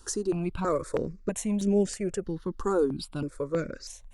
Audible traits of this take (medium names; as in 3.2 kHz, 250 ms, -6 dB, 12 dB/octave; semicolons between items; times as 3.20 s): notches that jump at a steady rate 3.1 Hz 600–4100 Hz